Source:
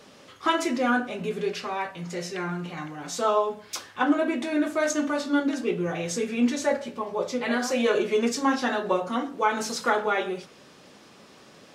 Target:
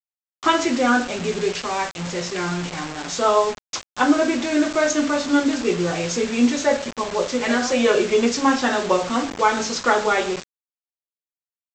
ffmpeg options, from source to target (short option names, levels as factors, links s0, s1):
-af "bandreject=f=50:t=h:w=6,bandreject=f=100:t=h:w=6,bandreject=f=150:t=h:w=6,aresample=16000,acrusher=bits=5:mix=0:aa=0.000001,aresample=44100,volume=1.88"